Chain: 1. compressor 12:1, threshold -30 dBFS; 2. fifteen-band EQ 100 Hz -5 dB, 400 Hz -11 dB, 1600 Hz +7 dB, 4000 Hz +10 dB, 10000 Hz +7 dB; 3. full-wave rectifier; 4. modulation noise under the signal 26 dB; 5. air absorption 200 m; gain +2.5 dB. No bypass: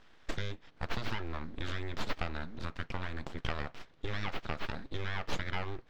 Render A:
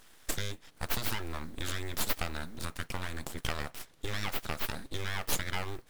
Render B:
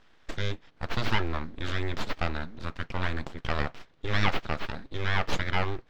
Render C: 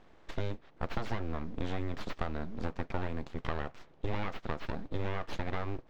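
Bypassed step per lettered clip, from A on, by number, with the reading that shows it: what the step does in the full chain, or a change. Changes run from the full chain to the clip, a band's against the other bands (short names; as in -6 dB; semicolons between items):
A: 5, 4 kHz band +4.5 dB; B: 1, mean gain reduction 5.5 dB; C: 2, 4 kHz band -8.0 dB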